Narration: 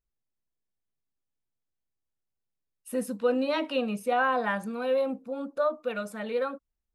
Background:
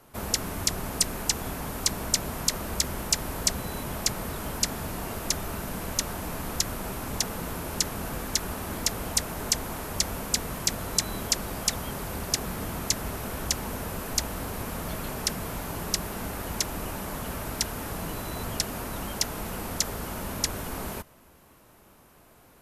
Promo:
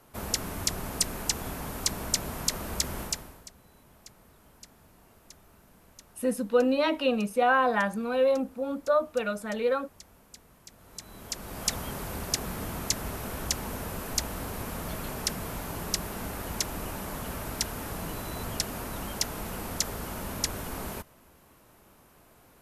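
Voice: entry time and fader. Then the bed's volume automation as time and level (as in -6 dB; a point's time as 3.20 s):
3.30 s, +2.5 dB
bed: 3.03 s -2.5 dB
3.50 s -24 dB
10.69 s -24 dB
11.69 s -2 dB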